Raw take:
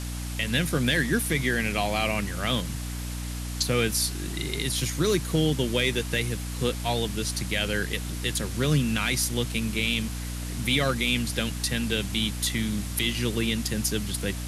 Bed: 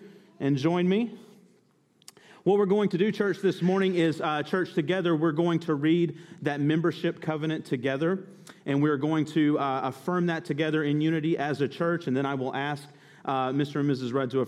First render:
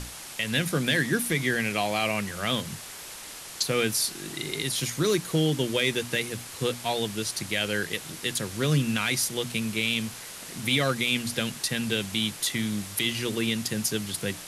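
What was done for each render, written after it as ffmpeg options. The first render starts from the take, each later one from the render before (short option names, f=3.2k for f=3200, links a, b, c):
-af "bandreject=f=60:t=h:w=6,bandreject=f=120:t=h:w=6,bandreject=f=180:t=h:w=6,bandreject=f=240:t=h:w=6,bandreject=f=300:t=h:w=6"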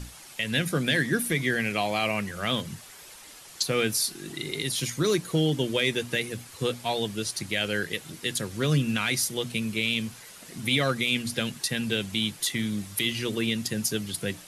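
-af "afftdn=nr=8:nf=-41"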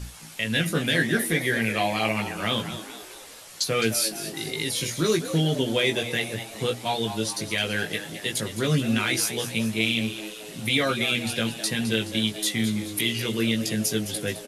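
-filter_complex "[0:a]asplit=2[a][b];[b]adelay=18,volume=-3.5dB[c];[a][c]amix=inputs=2:normalize=0,asplit=6[d][e][f][g][h][i];[e]adelay=212,afreqshift=100,volume=-11.5dB[j];[f]adelay=424,afreqshift=200,volume=-17.3dB[k];[g]adelay=636,afreqshift=300,volume=-23.2dB[l];[h]adelay=848,afreqshift=400,volume=-29dB[m];[i]adelay=1060,afreqshift=500,volume=-34.9dB[n];[d][j][k][l][m][n]amix=inputs=6:normalize=0"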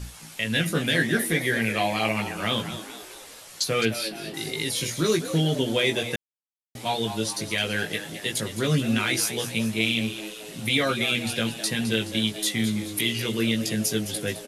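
-filter_complex "[0:a]asettb=1/sr,asplit=3[a][b][c];[a]atrim=end=3.854[d];[b]atrim=start=3.85:end=4.34,asetpts=PTS-STARTPTS,afade=t=in:d=0.004:c=qsin,afade=t=out:st=0.486:d=0.004:c=qsin,highshelf=f=4.7k:t=q:w=1.5:g=-9.5[e];[c]atrim=start=4.336[f];[d][e]acrossfade=d=0.004:c1=hsin:c2=qsin[g];[g][f]acrossfade=d=0.004:c1=qsin:c2=hsin,asplit=3[h][i][j];[h]atrim=end=6.16,asetpts=PTS-STARTPTS,afade=t=out:st=6.156:d=0.004:c=hsin[k];[i]atrim=start=6.16:end=6.75,asetpts=PTS-STARTPTS,volume=0[l];[j]atrim=start=6.75,asetpts=PTS-STARTPTS,afade=t=in:d=0.004:c=hsin[m];[k][l][m]concat=n=3:v=0:a=1"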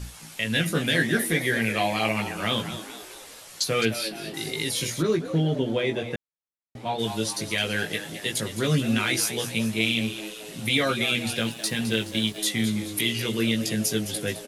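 -filter_complex "[0:a]asplit=3[a][b][c];[a]afade=t=out:st=5.01:d=0.02[d];[b]lowpass=f=1.3k:p=1,afade=t=in:st=5.01:d=0.02,afade=t=out:st=6.98:d=0.02[e];[c]afade=t=in:st=6.98:d=0.02[f];[d][e][f]amix=inputs=3:normalize=0,asettb=1/sr,asplit=3[g][h][i];[g]atrim=end=11.374[j];[h]atrim=start=11.37:end=12.38,asetpts=PTS-STARTPTS,afade=t=in:d=0.004:c=qsin,afade=t=out:st=1.006:d=0.004:c=qsin,aeval=exprs='sgn(val(0))*max(abs(val(0))-0.00531,0)':c=same[k];[i]atrim=start=12.376[l];[j][k]acrossfade=d=0.004:c1=hsin:c2=qsin[m];[m][l]acrossfade=d=0.004:c1=qsin:c2=hsin"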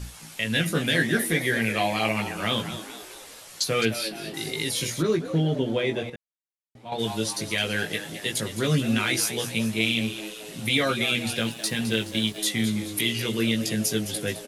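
-filter_complex "[0:a]asplit=3[a][b][c];[a]atrim=end=6.102[d];[b]atrim=start=6.098:end=6.922,asetpts=PTS-STARTPTS,volume=-9.5dB[e];[c]atrim=start=6.918[f];[d][e]acrossfade=d=0.004:c1=hsin:c2=hsin[g];[g][f]acrossfade=d=0.004:c1=hsin:c2=hsin"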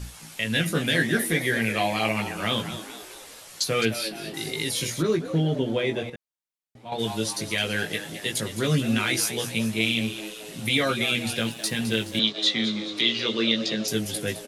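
-filter_complex "[0:a]asettb=1/sr,asplit=3[a][b][c];[a]atrim=end=12.194[d];[b]atrim=start=12.19:end=13.88,asetpts=PTS-STARTPTS,afade=t=in:d=0.004:c=qsin,afade=t=out:st=1.686:d=0.004:c=qsin,highpass=f=160:w=0.5412,highpass=f=160:w=1.3066,equalizer=f=190:t=q:w=4:g=-4,equalizer=f=550:t=q:w=4:g=5,equalizer=f=1.2k:t=q:w=4:g=6,equalizer=f=3.8k:t=q:w=4:g=10,lowpass=f=5.8k:w=0.5412,lowpass=f=5.8k:w=1.3066[e];[c]atrim=start=13.876[f];[d][e]acrossfade=d=0.004:c1=hsin:c2=qsin[g];[g][f]acrossfade=d=0.004:c1=qsin:c2=hsin"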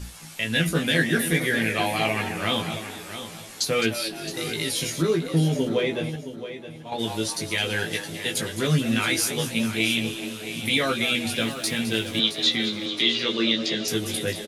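-filter_complex "[0:a]asplit=2[a][b];[b]adelay=12,volume=-7dB[c];[a][c]amix=inputs=2:normalize=0,asplit=2[d][e];[e]aecho=0:1:668|1336|2004:0.266|0.0718|0.0194[f];[d][f]amix=inputs=2:normalize=0"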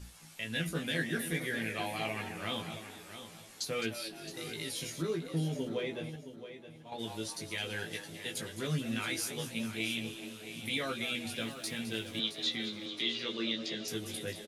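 -af "volume=-12dB"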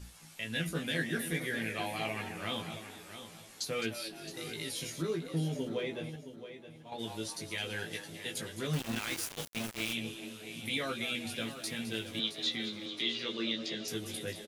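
-filter_complex "[0:a]asettb=1/sr,asplit=3[a][b][c];[a]atrim=end=8.734[d];[b]atrim=start=8.73:end=9.93,asetpts=PTS-STARTPTS,afade=t=in:d=0.004:c=qsin,afade=t=out:st=1.196:d=0.004:c=qsin,aeval=exprs='val(0)*gte(abs(val(0)),0.0188)':c=same[e];[c]atrim=start=9.926[f];[d][e]acrossfade=d=0.004:c1=hsin:c2=qsin[g];[g][f]acrossfade=d=0.004:c1=qsin:c2=hsin"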